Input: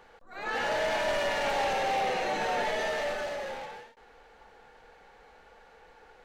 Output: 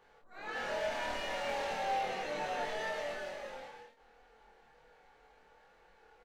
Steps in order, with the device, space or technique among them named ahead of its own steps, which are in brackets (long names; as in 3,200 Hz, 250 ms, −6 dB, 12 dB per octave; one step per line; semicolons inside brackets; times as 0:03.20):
double-tracked vocal (double-tracking delay 27 ms −3 dB; chorus effect 0.38 Hz, delay 20 ms, depth 3.2 ms)
level −6.5 dB